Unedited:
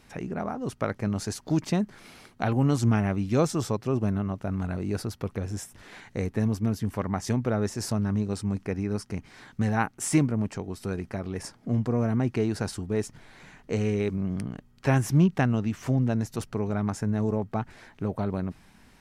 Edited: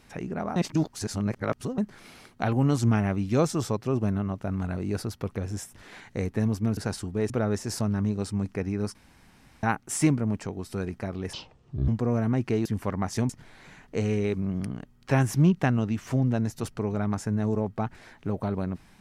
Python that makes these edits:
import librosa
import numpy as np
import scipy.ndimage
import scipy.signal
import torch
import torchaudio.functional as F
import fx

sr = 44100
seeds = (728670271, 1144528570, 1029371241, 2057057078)

y = fx.edit(x, sr, fx.reverse_span(start_s=0.56, length_s=1.22),
    fx.swap(start_s=6.77, length_s=0.64, other_s=12.52, other_length_s=0.53),
    fx.room_tone_fill(start_s=9.06, length_s=0.68),
    fx.speed_span(start_s=11.44, length_s=0.31, speed=0.56), tone=tone)